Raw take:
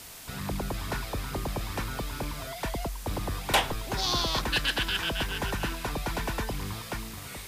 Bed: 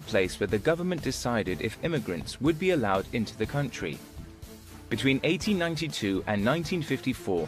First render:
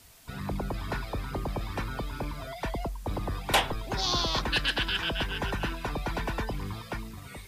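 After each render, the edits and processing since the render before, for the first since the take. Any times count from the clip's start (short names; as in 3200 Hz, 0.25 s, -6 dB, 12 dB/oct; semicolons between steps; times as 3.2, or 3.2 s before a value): denoiser 11 dB, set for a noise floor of -42 dBFS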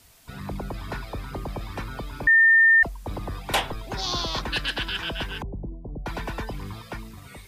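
2.27–2.83 bleep 1810 Hz -12.5 dBFS; 5.42–6.06 Gaussian blur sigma 17 samples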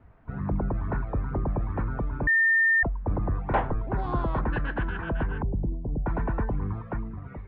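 LPF 1600 Hz 24 dB/oct; low shelf 340 Hz +7 dB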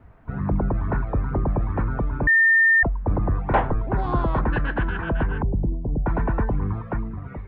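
gain +5 dB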